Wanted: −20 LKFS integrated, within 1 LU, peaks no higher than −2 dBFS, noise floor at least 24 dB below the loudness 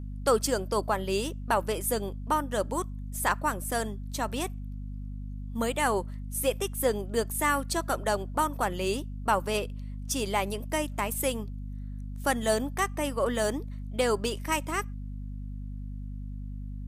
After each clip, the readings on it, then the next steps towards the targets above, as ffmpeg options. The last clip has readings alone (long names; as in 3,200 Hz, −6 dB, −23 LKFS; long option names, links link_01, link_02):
mains hum 50 Hz; hum harmonics up to 250 Hz; level of the hum −34 dBFS; integrated loudness −29.5 LKFS; sample peak −13.0 dBFS; target loudness −20.0 LKFS
→ -af "bandreject=frequency=50:width_type=h:width=6,bandreject=frequency=100:width_type=h:width=6,bandreject=frequency=150:width_type=h:width=6,bandreject=frequency=200:width_type=h:width=6,bandreject=frequency=250:width_type=h:width=6"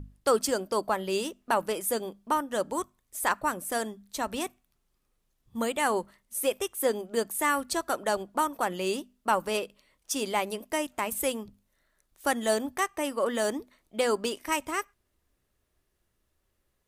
mains hum none found; integrated loudness −30.0 LKFS; sample peak −13.0 dBFS; target loudness −20.0 LKFS
→ -af "volume=10dB"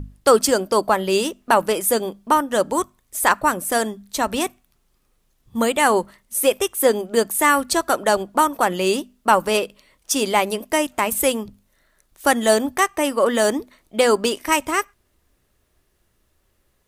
integrated loudness −20.0 LKFS; sample peak −3.0 dBFS; background noise floor −66 dBFS